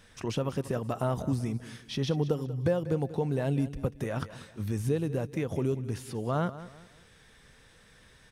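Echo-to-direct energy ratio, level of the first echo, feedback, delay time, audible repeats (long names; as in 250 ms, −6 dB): −14.5 dB, −15.0 dB, 33%, 190 ms, 3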